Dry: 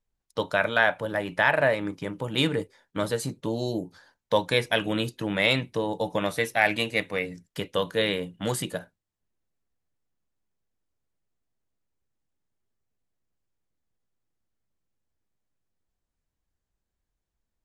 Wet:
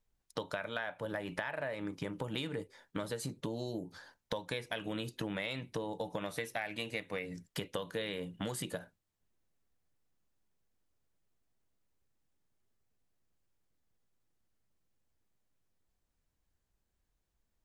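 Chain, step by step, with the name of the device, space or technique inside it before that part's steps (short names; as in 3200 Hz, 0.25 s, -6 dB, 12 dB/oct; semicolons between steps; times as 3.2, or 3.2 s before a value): serial compression, peaks first (compressor 5:1, threshold -32 dBFS, peak gain reduction 15 dB; compressor 2:1, threshold -39 dBFS, peak gain reduction 6.5 dB); gain +1.5 dB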